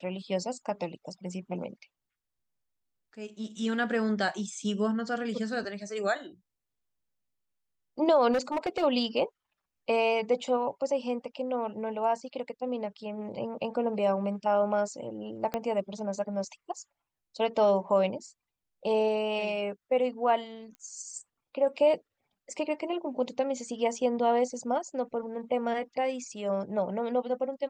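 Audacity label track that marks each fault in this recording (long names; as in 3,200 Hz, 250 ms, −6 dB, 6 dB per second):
8.320000	8.840000	clipping −23.5 dBFS
15.540000	15.540000	click −17 dBFS
20.750000	20.750000	click −32 dBFS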